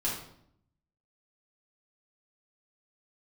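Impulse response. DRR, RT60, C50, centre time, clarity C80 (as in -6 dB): -6.5 dB, 0.70 s, 3.5 dB, 41 ms, 7.5 dB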